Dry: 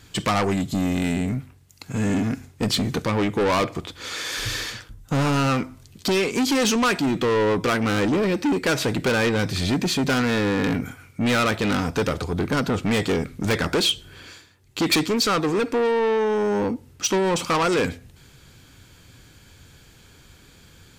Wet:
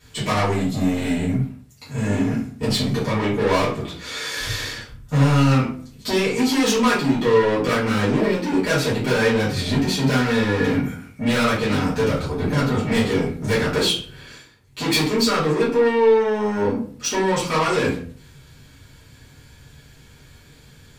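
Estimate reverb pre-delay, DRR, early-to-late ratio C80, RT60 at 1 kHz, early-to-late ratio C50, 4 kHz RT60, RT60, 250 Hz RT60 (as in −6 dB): 3 ms, −11.0 dB, 10.5 dB, 0.45 s, 6.0 dB, 0.30 s, 0.50 s, 0.55 s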